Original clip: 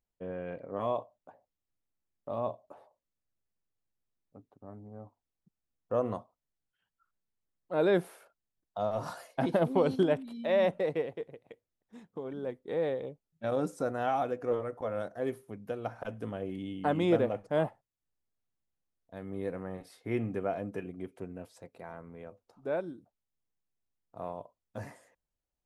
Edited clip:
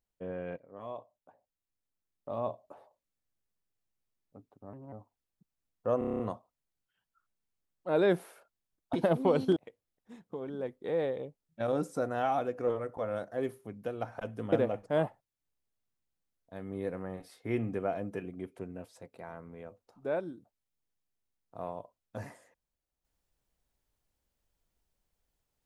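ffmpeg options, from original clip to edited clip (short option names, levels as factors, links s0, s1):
-filter_complex "[0:a]asplit=14[s0][s1][s2][s3][s4][s5][s6][s7][s8][s9][s10][s11][s12][s13];[s0]atrim=end=0.57,asetpts=PTS-STARTPTS,afade=t=out:st=0.566:d=0.004:c=hsin:silence=0.177828[s14];[s1]atrim=start=0.57:end=4.734,asetpts=PTS-STARTPTS,afade=t=in:d=2.05:silence=0.177828[s15];[s2]atrim=start=4.73:end=4.98,asetpts=PTS-STARTPTS,asetrate=56889,aresample=44100[s16];[s3]atrim=start=4.976:end=6.072[s17];[s4]atrim=start=6.038:end=6.072[s18];[s5]atrim=start=6.038:end=6.072[s19];[s6]atrim=start=6.038:end=6.072[s20];[s7]atrim=start=6.038:end=6.072[s21];[s8]atrim=start=6.038:end=6.072[s22];[s9]atrim=start=6.038:end=6.072[s23];[s10]atrim=start=6.038:end=8.782[s24];[s11]atrim=start=9.438:end=10.072[s25];[s12]atrim=start=11.398:end=16.362[s26];[s13]atrim=start=17.128[s27];[s14][s15]concat=n=2:v=0:a=1[s28];[s28][s16]acrossfade=d=0.004:c1=hsin:c2=hsin[s29];[s29][s17]acrossfade=d=0.004:c1=hsin:c2=hsin[s30];[s30][s18]acrossfade=d=0.004:c1=hsin:c2=hsin[s31];[s31][s19]acrossfade=d=0.004:c1=hsin:c2=hsin[s32];[s32][s20]acrossfade=d=0.004:c1=hsin:c2=hsin[s33];[s33][s21]acrossfade=d=0.004:c1=hsin:c2=hsin[s34];[s34][s22]acrossfade=d=0.004:c1=hsin:c2=hsin[s35];[s35][s23]acrossfade=d=0.004:c1=hsin:c2=hsin[s36];[s36][s24]acrossfade=d=0.004:c1=hsin:c2=hsin[s37];[s37][s25]acrossfade=d=0.004:c1=hsin:c2=hsin[s38];[s38][s26]acrossfade=d=0.004:c1=hsin:c2=hsin[s39];[s39][s27]acrossfade=d=0.004:c1=hsin:c2=hsin"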